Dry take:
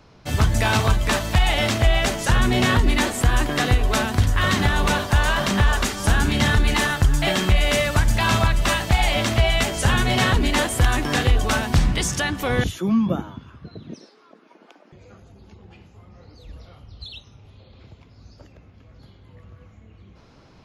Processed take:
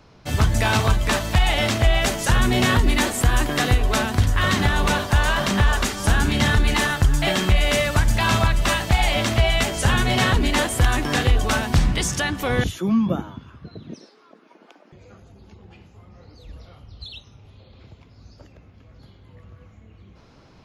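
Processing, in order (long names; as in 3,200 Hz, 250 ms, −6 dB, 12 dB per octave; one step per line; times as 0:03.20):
0:02.01–0:03.79: high-shelf EQ 8,400 Hz +5 dB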